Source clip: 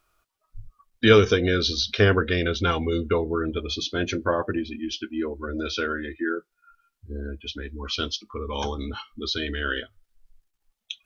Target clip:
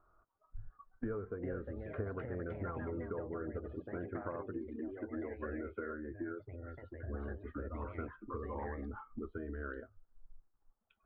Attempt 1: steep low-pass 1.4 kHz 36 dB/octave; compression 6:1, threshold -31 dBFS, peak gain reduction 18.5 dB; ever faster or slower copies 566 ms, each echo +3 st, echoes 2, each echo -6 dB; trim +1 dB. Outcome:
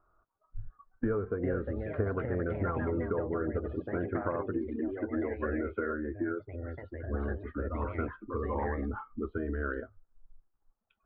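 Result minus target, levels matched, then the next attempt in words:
compression: peak gain reduction -9 dB
steep low-pass 1.4 kHz 36 dB/octave; compression 6:1, threshold -41.5 dBFS, peak gain reduction 27 dB; ever faster or slower copies 566 ms, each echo +3 st, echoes 2, each echo -6 dB; trim +1 dB

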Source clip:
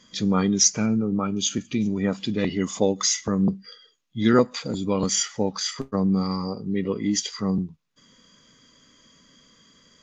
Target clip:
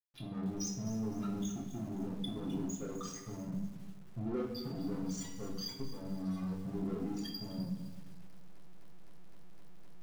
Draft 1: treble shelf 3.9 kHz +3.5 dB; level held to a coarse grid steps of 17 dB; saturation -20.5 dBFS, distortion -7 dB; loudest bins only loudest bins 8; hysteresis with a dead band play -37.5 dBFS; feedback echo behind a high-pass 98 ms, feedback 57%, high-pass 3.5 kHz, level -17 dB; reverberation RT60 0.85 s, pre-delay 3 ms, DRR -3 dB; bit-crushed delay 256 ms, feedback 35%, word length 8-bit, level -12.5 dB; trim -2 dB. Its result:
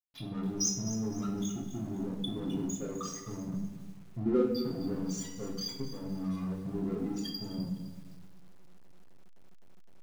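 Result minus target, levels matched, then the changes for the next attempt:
saturation: distortion -6 dB
change: saturation -31.5 dBFS, distortion -2 dB

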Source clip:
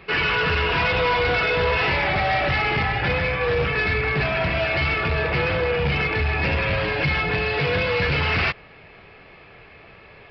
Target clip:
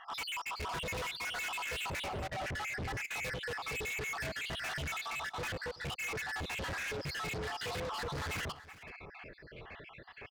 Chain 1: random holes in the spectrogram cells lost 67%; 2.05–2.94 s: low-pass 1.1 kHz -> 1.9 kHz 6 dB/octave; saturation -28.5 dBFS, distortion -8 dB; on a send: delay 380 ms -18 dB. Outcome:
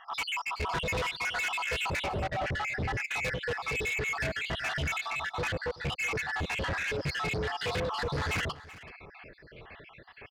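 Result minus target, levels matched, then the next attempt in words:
saturation: distortion -4 dB
random holes in the spectrogram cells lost 67%; 2.05–2.94 s: low-pass 1.1 kHz -> 1.9 kHz 6 dB/octave; saturation -37 dBFS, distortion -4 dB; on a send: delay 380 ms -18 dB

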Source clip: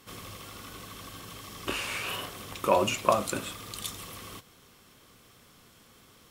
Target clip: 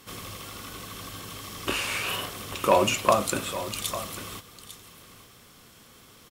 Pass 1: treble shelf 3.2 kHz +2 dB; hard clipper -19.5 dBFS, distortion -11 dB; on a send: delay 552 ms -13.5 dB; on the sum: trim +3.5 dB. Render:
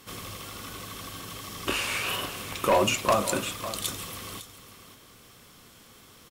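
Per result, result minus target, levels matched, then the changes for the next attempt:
echo 297 ms early; hard clipper: distortion +9 dB
change: delay 849 ms -13.5 dB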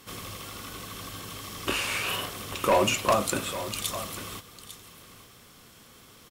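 hard clipper: distortion +9 dB
change: hard clipper -12.5 dBFS, distortion -20 dB

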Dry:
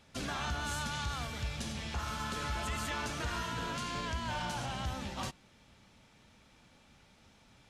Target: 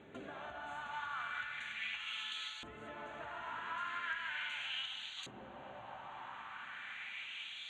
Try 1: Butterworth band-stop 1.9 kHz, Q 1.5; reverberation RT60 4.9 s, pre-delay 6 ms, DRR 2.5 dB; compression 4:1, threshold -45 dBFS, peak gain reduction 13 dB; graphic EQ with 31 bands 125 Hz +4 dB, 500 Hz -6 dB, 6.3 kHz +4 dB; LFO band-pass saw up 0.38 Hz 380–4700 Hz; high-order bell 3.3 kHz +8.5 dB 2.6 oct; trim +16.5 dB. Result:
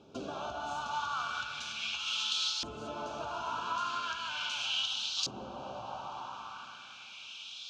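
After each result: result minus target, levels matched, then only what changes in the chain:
compression: peak gain reduction -8.5 dB; 2 kHz band -6.5 dB
change: compression 4:1, threshold -56.5 dBFS, peak gain reduction 21.5 dB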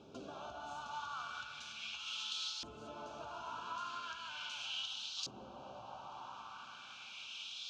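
2 kHz band -6.0 dB
change: Butterworth band-stop 5.2 kHz, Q 1.5

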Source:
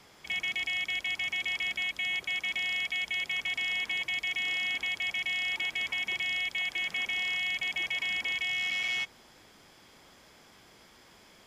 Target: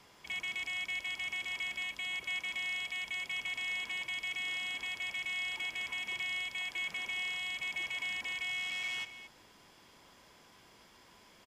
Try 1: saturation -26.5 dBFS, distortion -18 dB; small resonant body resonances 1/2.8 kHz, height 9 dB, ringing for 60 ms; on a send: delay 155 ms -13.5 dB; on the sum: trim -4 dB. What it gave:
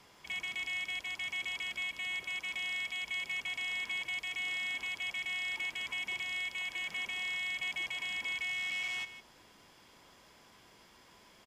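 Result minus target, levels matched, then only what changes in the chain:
echo 69 ms early
change: delay 224 ms -13.5 dB

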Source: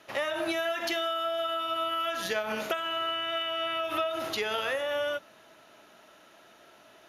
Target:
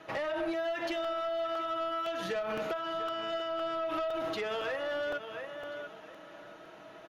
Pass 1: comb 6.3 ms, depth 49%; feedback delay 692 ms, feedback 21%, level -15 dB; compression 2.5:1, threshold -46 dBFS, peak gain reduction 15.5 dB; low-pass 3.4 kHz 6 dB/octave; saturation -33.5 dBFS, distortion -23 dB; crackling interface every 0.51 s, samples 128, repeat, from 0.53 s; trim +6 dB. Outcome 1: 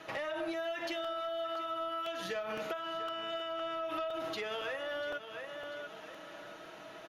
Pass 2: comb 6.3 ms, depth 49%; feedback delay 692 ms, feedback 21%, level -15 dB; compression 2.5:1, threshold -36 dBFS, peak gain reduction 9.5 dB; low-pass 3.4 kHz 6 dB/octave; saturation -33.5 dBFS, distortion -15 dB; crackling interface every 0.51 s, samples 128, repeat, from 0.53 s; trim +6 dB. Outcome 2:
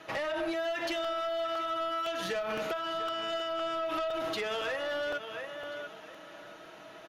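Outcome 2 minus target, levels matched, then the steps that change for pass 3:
4 kHz band +3.0 dB
change: low-pass 1.5 kHz 6 dB/octave

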